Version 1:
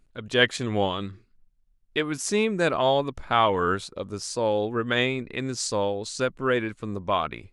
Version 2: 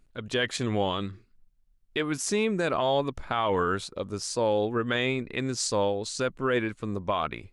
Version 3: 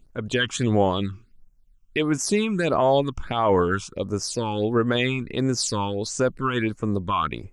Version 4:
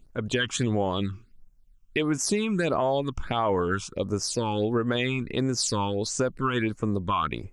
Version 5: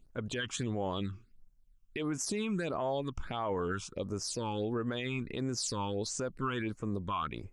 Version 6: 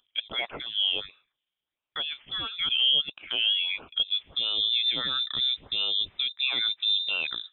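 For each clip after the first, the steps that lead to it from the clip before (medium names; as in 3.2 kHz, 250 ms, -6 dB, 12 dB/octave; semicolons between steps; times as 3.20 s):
peak limiter -16 dBFS, peak gain reduction 9.5 dB
phase shifter stages 8, 1.5 Hz, lowest notch 530–4000 Hz; trim +6.5 dB
compression, threshold -21 dBFS, peak gain reduction 7 dB
peak limiter -18.5 dBFS, peak gain reduction 7.5 dB; trim -6.5 dB
high-pass sweep 560 Hz -> 190 Hz, 3.93–4.49 s; frequency inversion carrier 3.8 kHz; trim +4.5 dB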